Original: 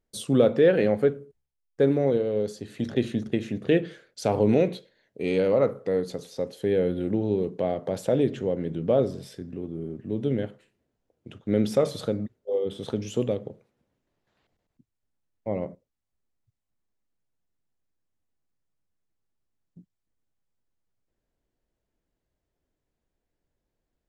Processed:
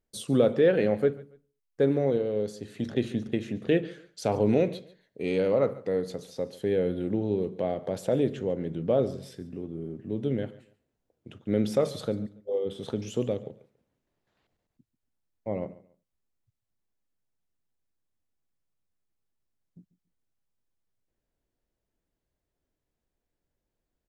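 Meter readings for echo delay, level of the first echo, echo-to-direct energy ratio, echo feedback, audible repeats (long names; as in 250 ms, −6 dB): 141 ms, −19.5 dB, −19.0 dB, 25%, 2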